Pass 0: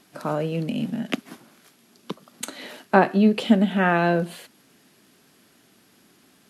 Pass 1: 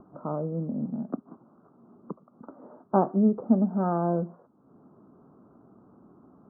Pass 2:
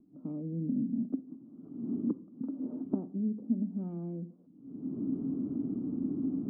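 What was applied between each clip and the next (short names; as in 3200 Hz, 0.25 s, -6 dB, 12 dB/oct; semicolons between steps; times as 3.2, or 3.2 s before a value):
upward compressor, threshold -37 dBFS; steep low-pass 1300 Hz 72 dB/oct; low shelf 340 Hz +4 dB; gain -7 dB
recorder AGC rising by 36 dB/s; vocal tract filter i; shoebox room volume 820 m³, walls furnished, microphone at 0.43 m; gain -4 dB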